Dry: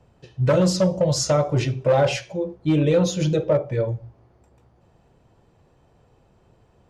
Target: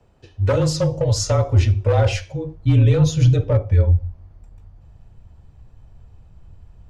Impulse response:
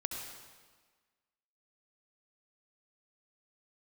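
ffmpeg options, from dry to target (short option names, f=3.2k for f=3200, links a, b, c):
-af "asubboost=boost=11.5:cutoff=120,afreqshift=-29"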